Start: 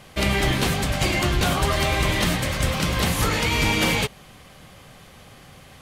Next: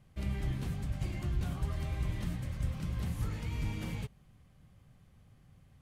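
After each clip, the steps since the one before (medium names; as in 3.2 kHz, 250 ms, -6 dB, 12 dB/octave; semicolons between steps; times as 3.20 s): FFT filter 120 Hz 0 dB, 500 Hz -15 dB, 1.8 kHz -16 dB, 3.8 kHz -19 dB, 9.1 kHz -16 dB; trim -9 dB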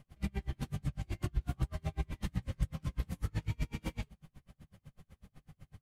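compression, threshold -37 dBFS, peak gain reduction 10 dB; chorus voices 4, 0.45 Hz, delay 17 ms, depth 4.5 ms; logarithmic tremolo 8 Hz, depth 37 dB; trim +13 dB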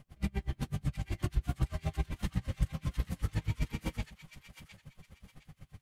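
feedback echo behind a high-pass 711 ms, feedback 31%, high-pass 1.6 kHz, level -7.5 dB; trim +2.5 dB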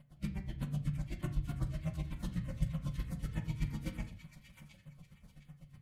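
comb of notches 400 Hz; LFO notch saw down 3.3 Hz 510–6600 Hz; on a send at -6 dB: reverberation RT60 0.45 s, pre-delay 3 ms; on the sum: trim -3.5 dB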